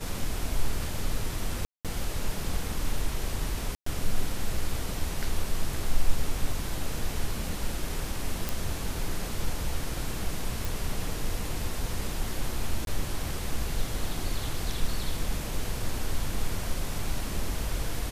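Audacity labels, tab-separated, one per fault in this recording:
1.650000	1.850000	dropout 197 ms
3.750000	3.860000	dropout 114 ms
8.490000	8.490000	pop
10.650000	10.650000	pop
12.850000	12.870000	dropout 22 ms

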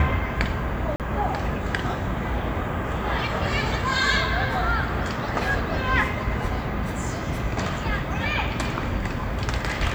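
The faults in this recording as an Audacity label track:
0.960000	1.000000	dropout 38 ms

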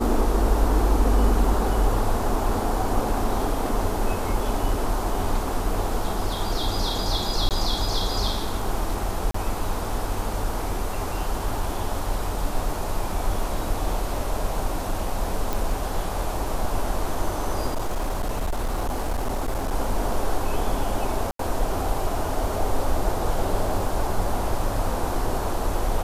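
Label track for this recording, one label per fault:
7.490000	7.510000	dropout 18 ms
9.310000	9.340000	dropout 34 ms
15.530000	15.530000	pop
17.690000	19.730000	clipped -21 dBFS
21.310000	21.390000	dropout 83 ms

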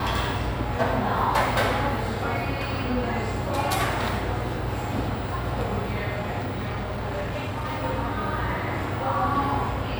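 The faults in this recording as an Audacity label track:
6.390000	7.840000	clipped -25.5 dBFS

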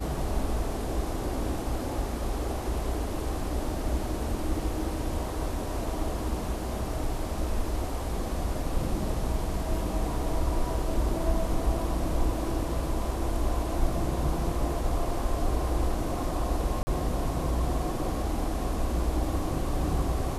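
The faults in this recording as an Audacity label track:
16.830000	16.870000	dropout 40 ms

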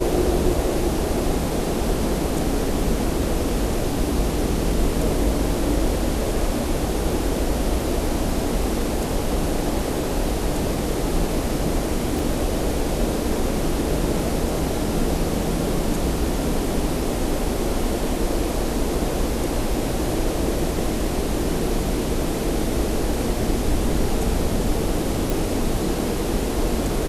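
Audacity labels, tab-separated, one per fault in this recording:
12.190000	12.190000	pop
25.300000	25.300000	pop

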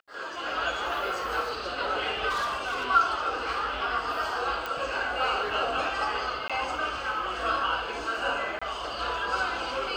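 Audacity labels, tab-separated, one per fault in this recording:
2.290000	2.860000	clipped -26 dBFS
4.660000	4.660000	pop
6.480000	6.500000	dropout 16 ms
8.590000	8.620000	dropout 25 ms

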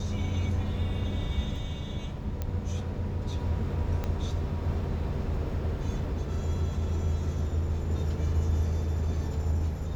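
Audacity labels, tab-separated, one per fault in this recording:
2.420000	2.420000	pop -19 dBFS
4.040000	4.040000	pop -19 dBFS

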